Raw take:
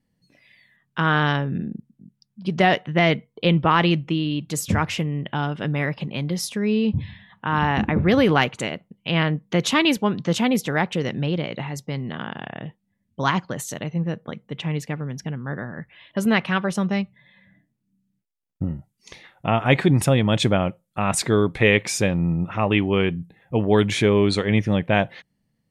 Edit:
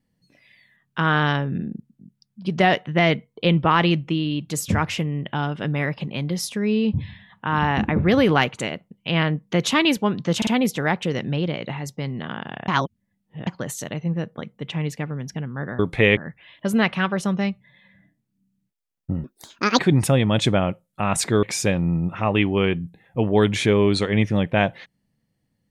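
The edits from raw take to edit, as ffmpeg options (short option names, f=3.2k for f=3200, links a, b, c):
-filter_complex "[0:a]asplit=10[a][b][c][d][e][f][g][h][i][j];[a]atrim=end=10.422[k];[b]atrim=start=10.368:end=10.422[l];[c]atrim=start=10.368:end=12.582[m];[d]atrim=start=12.578:end=13.372,asetpts=PTS-STARTPTS,areverse[n];[e]atrim=start=13.368:end=15.692[o];[f]atrim=start=21.408:end=21.792[p];[g]atrim=start=15.688:end=18.764[q];[h]atrim=start=18.76:end=19.77,asetpts=PTS-STARTPTS,asetrate=81144,aresample=44100,atrim=end_sample=24207,asetpts=PTS-STARTPTS[r];[i]atrim=start=19.766:end=21.412[s];[j]atrim=start=21.788[t];[k][l]acrossfade=d=0.004:c1=hsin:c2=hsin[u];[u][m]acrossfade=d=0.004:c1=hsin:c2=hsin[v];[v][n]acrossfade=d=0.004:c1=hsin:c2=hsin[w];[w][o]acrossfade=d=0.004:c1=hsin:c2=hsin[x];[x][p]acrossfade=d=0.004:c1=hsin:c2=hsin[y];[y][q]acrossfade=d=0.004:c1=hsin:c2=hsin[z];[z][r]acrossfade=d=0.004:c1=hsin:c2=hsin[aa];[aa][s]acrossfade=d=0.004:c1=hsin:c2=hsin[ab];[ab][t]acrossfade=d=0.004:c1=hsin:c2=hsin"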